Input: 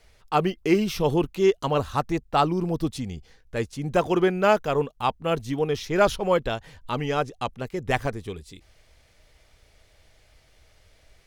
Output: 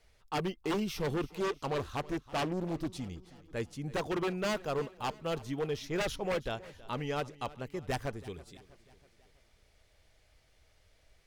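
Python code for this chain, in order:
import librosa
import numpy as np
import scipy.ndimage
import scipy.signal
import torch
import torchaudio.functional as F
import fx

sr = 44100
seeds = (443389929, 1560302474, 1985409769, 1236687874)

y = 10.0 ** (-17.5 / 20.0) * (np.abs((x / 10.0 ** (-17.5 / 20.0) + 3.0) % 4.0 - 2.0) - 1.0)
y = fx.echo_feedback(y, sr, ms=324, feedback_pct=53, wet_db=-19.5)
y = fx.doppler_dist(y, sr, depth_ms=0.44, at=(1.4, 3.0))
y = y * 10.0 ** (-8.5 / 20.0)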